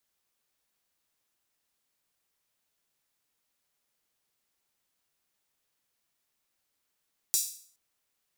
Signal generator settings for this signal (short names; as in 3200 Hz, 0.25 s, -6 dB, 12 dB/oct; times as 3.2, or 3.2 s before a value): open hi-hat length 0.42 s, high-pass 6000 Hz, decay 0.51 s